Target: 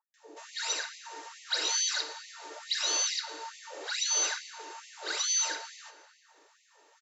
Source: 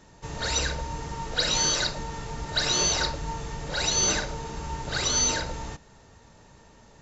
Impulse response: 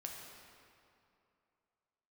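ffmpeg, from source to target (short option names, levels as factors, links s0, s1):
-filter_complex "[0:a]acrossover=split=680[s0][s1];[s1]adelay=140[s2];[s0][s2]amix=inputs=2:normalize=0,asplit=2[s3][s4];[1:a]atrim=start_sample=2205[s5];[s4][s5]afir=irnorm=-1:irlink=0,volume=0.708[s6];[s3][s6]amix=inputs=2:normalize=0,afftfilt=real='re*gte(b*sr/1024,270*pow(1900/270,0.5+0.5*sin(2*PI*2.3*pts/sr)))':imag='im*gte(b*sr/1024,270*pow(1900/270,0.5+0.5*sin(2*PI*2.3*pts/sr)))':win_size=1024:overlap=0.75,volume=0.422"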